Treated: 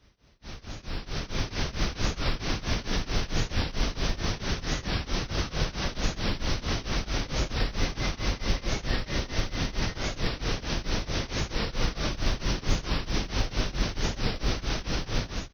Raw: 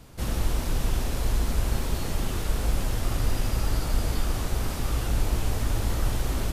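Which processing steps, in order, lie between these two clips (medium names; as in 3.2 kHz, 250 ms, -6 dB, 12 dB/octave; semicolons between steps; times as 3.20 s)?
high-pass 76 Hz 12 dB/octave; treble shelf 6.7 kHz +3.5 dB; level rider gain up to 15.5 dB; wide varispeed 0.42×; companded quantiser 8-bit; tremolo triangle 4.5 Hz, depth 95%; warped record 45 rpm, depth 160 cents; trim -7.5 dB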